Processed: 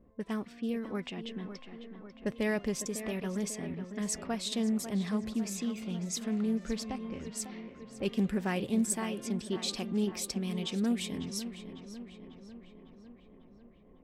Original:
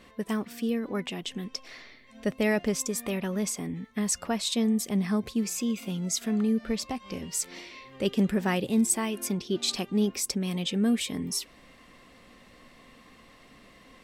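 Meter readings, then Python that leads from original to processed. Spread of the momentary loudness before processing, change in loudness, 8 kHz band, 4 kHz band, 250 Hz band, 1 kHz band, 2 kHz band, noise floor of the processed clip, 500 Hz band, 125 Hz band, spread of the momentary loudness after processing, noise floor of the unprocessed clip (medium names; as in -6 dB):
9 LU, -5.5 dB, -7.0 dB, -6.5 dB, -4.5 dB, -5.5 dB, -5.5 dB, -57 dBFS, -5.0 dB, -4.5 dB, 15 LU, -55 dBFS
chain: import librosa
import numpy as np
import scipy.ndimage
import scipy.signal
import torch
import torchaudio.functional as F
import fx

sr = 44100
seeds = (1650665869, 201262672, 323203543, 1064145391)

y = fx.env_lowpass(x, sr, base_hz=450.0, full_db=-26.5)
y = fx.low_shelf(y, sr, hz=79.0, db=7.5)
y = fx.echo_tape(y, sr, ms=549, feedback_pct=70, wet_db=-9, lp_hz=2900.0, drive_db=15.0, wow_cents=32)
y = fx.doppler_dist(y, sr, depth_ms=0.16)
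y = y * librosa.db_to_amplitude(-6.0)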